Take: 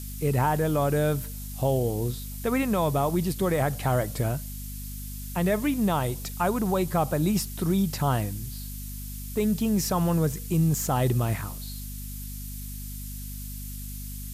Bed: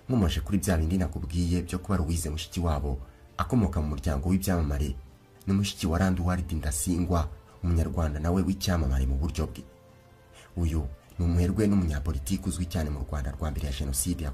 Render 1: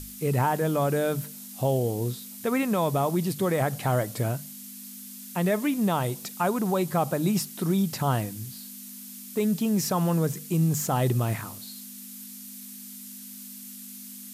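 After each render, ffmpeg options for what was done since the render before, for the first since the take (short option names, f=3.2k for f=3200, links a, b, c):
-af "bandreject=f=50:t=h:w=6,bandreject=f=100:t=h:w=6,bandreject=f=150:t=h:w=6"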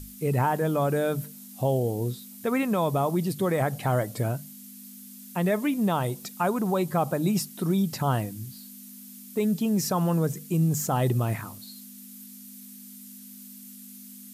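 -af "afftdn=nr=6:nf=-43"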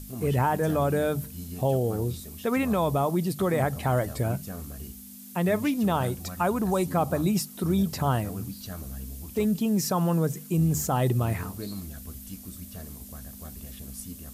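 -filter_complex "[1:a]volume=-12.5dB[a];[0:a][a]amix=inputs=2:normalize=0"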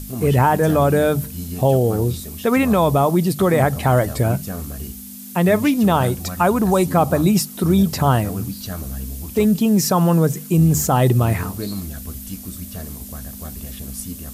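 -af "volume=9dB"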